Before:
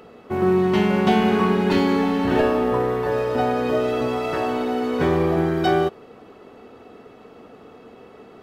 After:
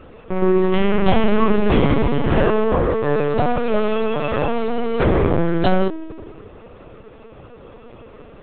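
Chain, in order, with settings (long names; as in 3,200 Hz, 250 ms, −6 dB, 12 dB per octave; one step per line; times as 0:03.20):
on a send: delay with a low-pass on its return 82 ms, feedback 73%, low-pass 1,300 Hz, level −16.5 dB
on the sum: linear-prediction vocoder at 8 kHz pitch kept
level +3.5 dB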